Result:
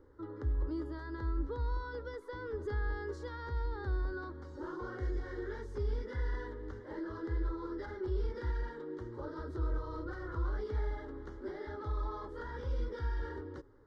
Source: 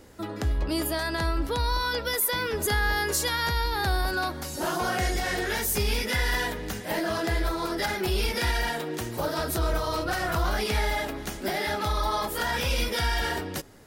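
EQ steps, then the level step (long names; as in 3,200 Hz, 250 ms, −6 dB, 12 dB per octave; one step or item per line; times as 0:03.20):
dynamic equaliser 1,000 Hz, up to −5 dB, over −39 dBFS, Q 0.79
head-to-tape spacing loss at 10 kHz 44 dB
phaser with its sweep stopped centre 690 Hz, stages 6
−5.0 dB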